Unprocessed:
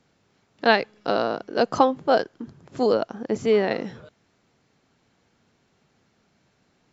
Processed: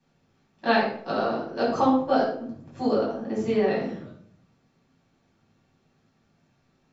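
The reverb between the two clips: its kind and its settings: simulated room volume 870 m³, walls furnished, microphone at 8.9 m; trim -14 dB

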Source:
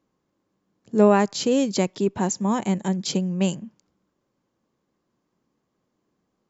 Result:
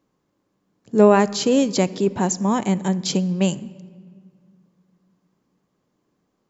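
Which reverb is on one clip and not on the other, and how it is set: simulated room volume 3300 m³, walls mixed, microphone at 0.33 m; trim +3 dB

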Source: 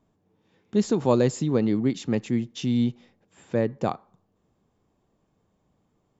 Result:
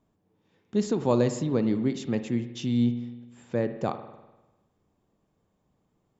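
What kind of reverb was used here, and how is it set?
spring tank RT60 1.1 s, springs 50 ms, chirp 30 ms, DRR 10 dB; trim -3 dB

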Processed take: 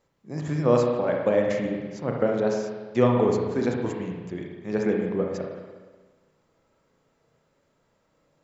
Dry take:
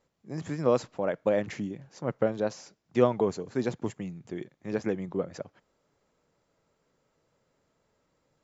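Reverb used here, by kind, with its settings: spring tank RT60 1.4 s, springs 33/59 ms, chirp 25 ms, DRR 0 dB; trim +2 dB

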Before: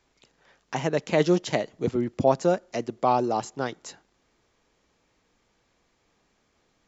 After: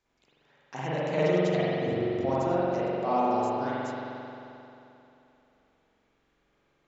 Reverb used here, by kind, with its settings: spring tank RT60 3 s, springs 44 ms, chirp 55 ms, DRR -9.5 dB; trim -11.5 dB

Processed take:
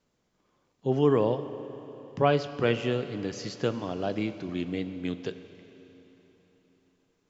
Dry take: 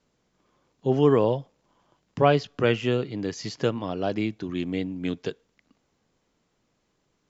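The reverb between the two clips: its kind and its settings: Schroeder reverb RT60 3.8 s, combs from 30 ms, DRR 11 dB; trim -3.5 dB

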